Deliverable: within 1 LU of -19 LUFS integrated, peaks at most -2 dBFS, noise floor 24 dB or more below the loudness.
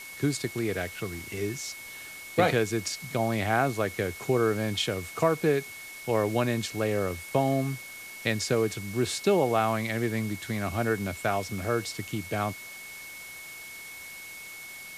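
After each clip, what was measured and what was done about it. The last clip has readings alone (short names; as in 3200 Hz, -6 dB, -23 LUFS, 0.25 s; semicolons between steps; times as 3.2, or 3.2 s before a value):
steady tone 2200 Hz; tone level -42 dBFS; noise floor -43 dBFS; noise floor target -53 dBFS; loudness -28.5 LUFS; peak -9.0 dBFS; loudness target -19.0 LUFS
-> notch 2200 Hz, Q 30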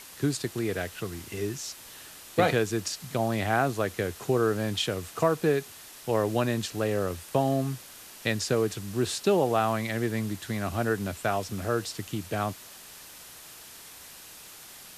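steady tone none; noise floor -47 dBFS; noise floor target -53 dBFS
-> denoiser 6 dB, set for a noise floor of -47 dBFS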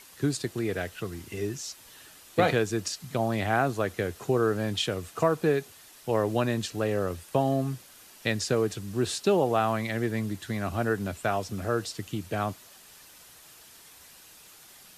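noise floor -52 dBFS; noise floor target -53 dBFS
-> denoiser 6 dB, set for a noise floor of -52 dBFS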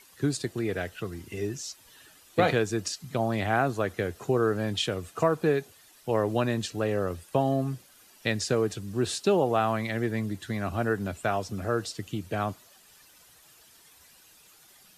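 noise floor -57 dBFS; loudness -29.0 LUFS; peak -9.0 dBFS; loudness target -19.0 LUFS
-> gain +10 dB; limiter -2 dBFS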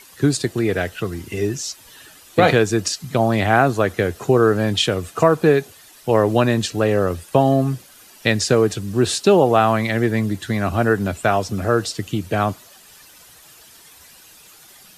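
loudness -19.0 LUFS; peak -2.0 dBFS; noise floor -47 dBFS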